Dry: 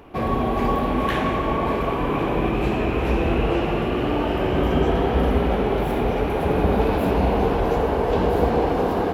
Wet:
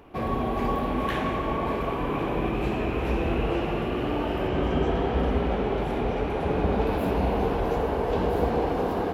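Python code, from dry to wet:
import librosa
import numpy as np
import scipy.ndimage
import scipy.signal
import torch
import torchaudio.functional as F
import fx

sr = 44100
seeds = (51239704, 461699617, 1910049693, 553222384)

y = fx.lowpass(x, sr, hz=8300.0, slope=12, at=(4.48, 6.87))
y = F.gain(torch.from_numpy(y), -5.0).numpy()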